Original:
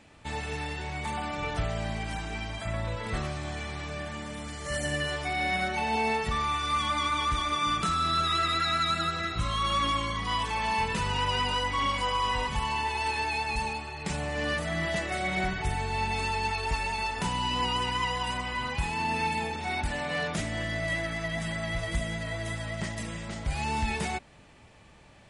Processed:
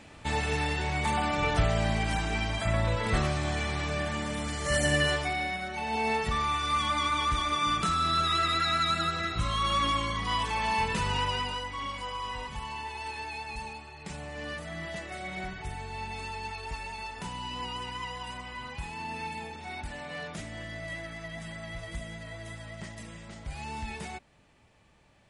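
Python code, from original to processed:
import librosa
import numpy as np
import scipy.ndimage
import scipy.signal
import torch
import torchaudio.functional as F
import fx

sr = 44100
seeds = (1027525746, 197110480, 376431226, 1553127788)

y = fx.gain(x, sr, db=fx.line((5.1, 5.0), (5.61, -7.0), (6.16, 0.0), (11.16, 0.0), (11.7, -8.0)))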